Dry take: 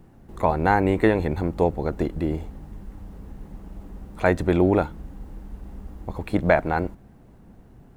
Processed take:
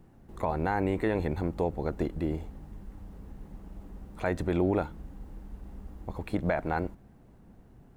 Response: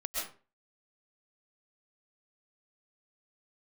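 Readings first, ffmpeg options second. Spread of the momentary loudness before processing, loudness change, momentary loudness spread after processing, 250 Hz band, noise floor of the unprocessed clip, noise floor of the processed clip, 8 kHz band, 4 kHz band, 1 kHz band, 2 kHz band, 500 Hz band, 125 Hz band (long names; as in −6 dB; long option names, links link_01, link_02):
22 LU, −8.0 dB, 19 LU, −7.5 dB, −50 dBFS, −56 dBFS, can't be measured, −8.0 dB, −9.0 dB, −9.5 dB, −8.5 dB, −7.0 dB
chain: -af "alimiter=limit=-11.5dB:level=0:latency=1:release=84,volume=-5.5dB"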